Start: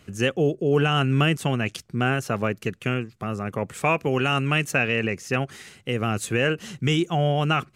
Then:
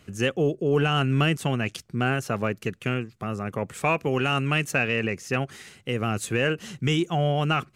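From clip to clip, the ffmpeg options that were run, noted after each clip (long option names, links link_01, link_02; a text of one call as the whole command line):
ffmpeg -i in.wav -af "acontrast=30,volume=-6.5dB" out.wav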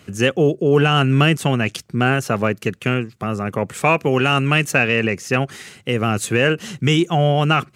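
ffmpeg -i in.wav -af "highpass=79,volume=7.5dB" out.wav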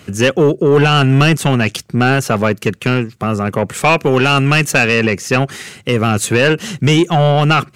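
ffmpeg -i in.wav -af "asoftclip=type=tanh:threshold=-11dB,volume=7dB" out.wav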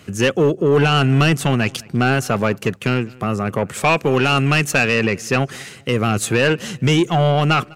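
ffmpeg -i in.wav -filter_complex "[0:a]asplit=2[link_01][link_02];[link_02]adelay=202,lowpass=frequency=3800:poles=1,volume=-24dB,asplit=2[link_03][link_04];[link_04]adelay=202,lowpass=frequency=3800:poles=1,volume=0.37[link_05];[link_01][link_03][link_05]amix=inputs=3:normalize=0,volume=-4dB" out.wav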